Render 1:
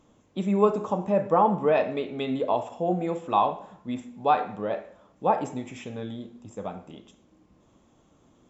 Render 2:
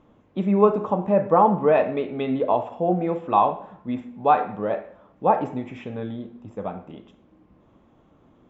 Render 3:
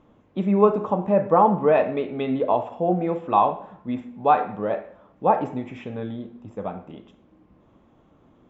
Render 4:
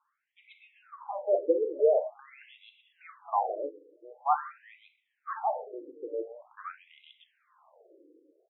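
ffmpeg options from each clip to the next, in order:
-af "lowpass=2.4k,volume=4dB"
-af anull
-filter_complex "[0:a]dynaudnorm=f=120:g=11:m=15dB,acrossover=split=760|2800[a][b][c];[c]adelay=130[d];[a]adelay=170[e];[e][b][d]amix=inputs=3:normalize=0,afftfilt=real='re*between(b*sr/1024,380*pow(2900/380,0.5+0.5*sin(2*PI*0.46*pts/sr))/1.41,380*pow(2900/380,0.5+0.5*sin(2*PI*0.46*pts/sr))*1.41)':imag='im*between(b*sr/1024,380*pow(2900/380,0.5+0.5*sin(2*PI*0.46*pts/sr))/1.41,380*pow(2900/380,0.5+0.5*sin(2*PI*0.46*pts/sr))*1.41)':win_size=1024:overlap=0.75,volume=-7dB"

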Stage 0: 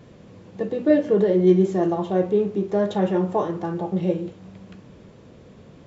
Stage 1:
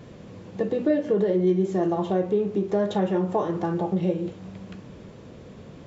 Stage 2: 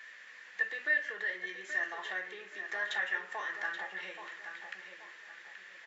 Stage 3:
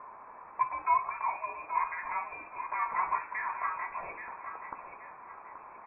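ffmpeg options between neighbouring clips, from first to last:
-af "acompressor=threshold=-25dB:ratio=2.5,volume=3dB"
-filter_complex "[0:a]highpass=f=1.8k:t=q:w=8.5,asplit=2[a][b];[b]adelay=828,lowpass=f=4.6k:p=1,volume=-8.5dB,asplit=2[c][d];[d]adelay=828,lowpass=f=4.6k:p=1,volume=0.36,asplit=2[e][f];[f]adelay=828,lowpass=f=4.6k:p=1,volume=0.36,asplit=2[g][h];[h]adelay=828,lowpass=f=4.6k:p=1,volume=0.36[i];[a][c][e][g][i]amix=inputs=5:normalize=0,volume=-3dB"
-af "lowpass=f=2.4k:t=q:w=0.5098,lowpass=f=2.4k:t=q:w=0.6013,lowpass=f=2.4k:t=q:w=0.9,lowpass=f=2.4k:t=q:w=2.563,afreqshift=-2800,volume=3.5dB"

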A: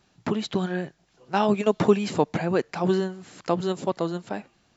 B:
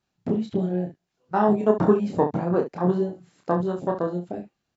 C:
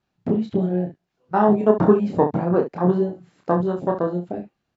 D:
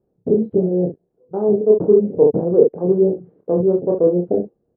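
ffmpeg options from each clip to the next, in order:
-af "afwtdn=0.0501,aecho=1:1:28|68:0.668|0.299"
-af "aemphasis=mode=reproduction:type=50fm,volume=3dB"
-af "areverse,acompressor=threshold=-24dB:ratio=10,areverse,lowpass=f=460:t=q:w=4.9,volume=5.5dB"

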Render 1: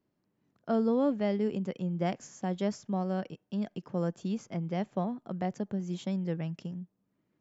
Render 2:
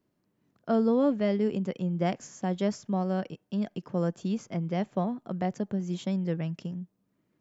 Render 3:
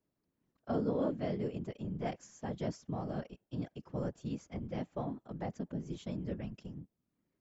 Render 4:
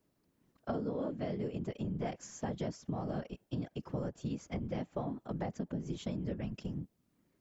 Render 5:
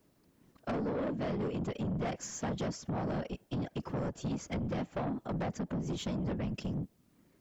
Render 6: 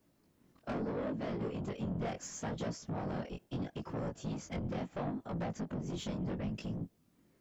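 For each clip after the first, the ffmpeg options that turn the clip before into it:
-af "bandreject=f=820:w=21,volume=3dB"
-af "afftfilt=real='hypot(re,im)*cos(2*PI*random(0))':imag='hypot(re,im)*sin(2*PI*random(1))':win_size=512:overlap=0.75,volume=-3.5dB"
-af "acompressor=threshold=-42dB:ratio=6,volume=8dB"
-af "asoftclip=type=tanh:threshold=-38.5dB,volume=8dB"
-af "flanger=delay=17.5:depth=5.9:speed=0.74"

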